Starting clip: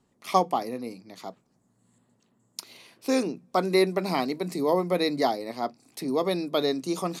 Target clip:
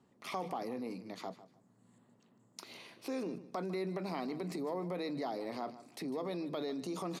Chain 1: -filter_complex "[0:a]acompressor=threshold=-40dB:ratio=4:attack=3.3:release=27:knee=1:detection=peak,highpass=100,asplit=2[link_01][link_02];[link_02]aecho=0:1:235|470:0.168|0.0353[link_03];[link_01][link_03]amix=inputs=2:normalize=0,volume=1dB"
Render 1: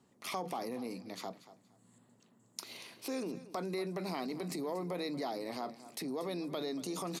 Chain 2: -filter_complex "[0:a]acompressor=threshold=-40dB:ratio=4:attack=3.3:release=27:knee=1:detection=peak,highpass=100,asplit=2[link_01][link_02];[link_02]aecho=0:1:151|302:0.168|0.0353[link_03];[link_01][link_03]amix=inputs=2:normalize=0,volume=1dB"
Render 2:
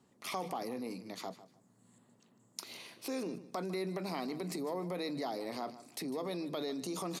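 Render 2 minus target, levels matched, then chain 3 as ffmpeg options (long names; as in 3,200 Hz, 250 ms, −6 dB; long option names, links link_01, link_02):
8,000 Hz band +7.0 dB
-filter_complex "[0:a]acompressor=threshold=-40dB:ratio=4:attack=3.3:release=27:knee=1:detection=peak,highpass=100,highshelf=frequency=4800:gain=-10.5,asplit=2[link_01][link_02];[link_02]aecho=0:1:151|302:0.168|0.0353[link_03];[link_01][link_03]amix=inputs=2:normalize=0,volume=1dB"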